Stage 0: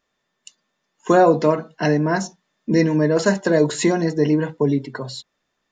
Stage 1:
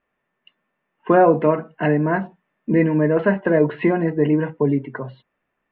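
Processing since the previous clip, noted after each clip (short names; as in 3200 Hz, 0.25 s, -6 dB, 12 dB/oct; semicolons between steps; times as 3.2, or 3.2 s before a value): steep low-pass 2800 Hz 48 dB/oct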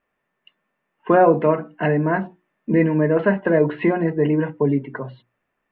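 notches 60/120/180/240/300/360 Hz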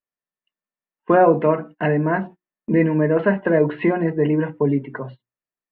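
gate -36 dBFS, range -23 dB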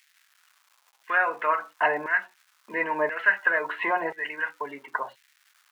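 crackle 530/s -49 dBFS; LFO high-pass saw down 0.97 Hz 800–2000 Hz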